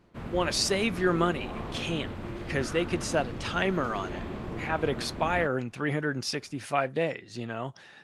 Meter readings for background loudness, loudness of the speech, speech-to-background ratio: -38.0 LUFS, -30.0 LUFS, 8.0 dB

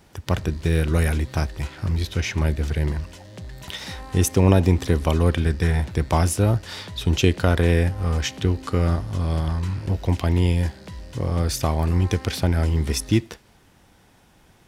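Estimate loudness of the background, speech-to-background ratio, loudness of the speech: -40.0 LUFS, 17.5 dB, -22.5 LUFS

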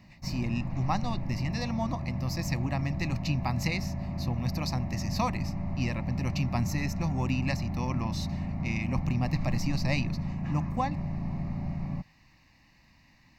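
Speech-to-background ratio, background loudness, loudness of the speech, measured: 1.5 dB, -34.5 LUFS, -33.0 LUFS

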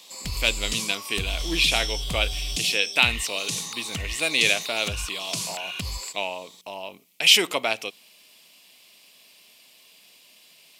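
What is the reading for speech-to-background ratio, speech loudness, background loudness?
6.5 dB, -23.5 LUFS, -30.0 LUFS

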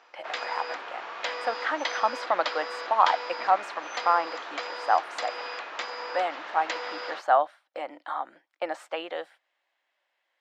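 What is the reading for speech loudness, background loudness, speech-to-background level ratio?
-29.0 LUFS, -35.0 LUFS, 6.0 dB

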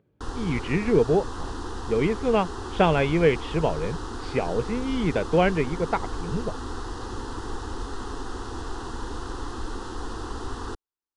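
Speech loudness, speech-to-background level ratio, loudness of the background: -25.0 LUFS, 10.5 dB, -35.5 LUFS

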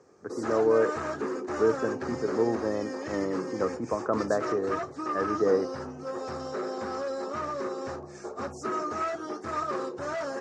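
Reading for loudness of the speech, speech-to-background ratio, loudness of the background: -29.5 LUFS, 4.5 dB, -34.0 LUFS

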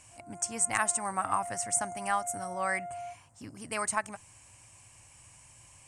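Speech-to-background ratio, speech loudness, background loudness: 11.5 dB, -31.0 LUFS, -42.5 LUFS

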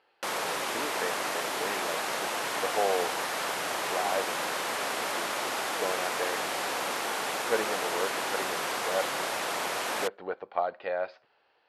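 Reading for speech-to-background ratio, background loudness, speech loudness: -4.5 dB, -31.0 LUFS, -35.5 LUFS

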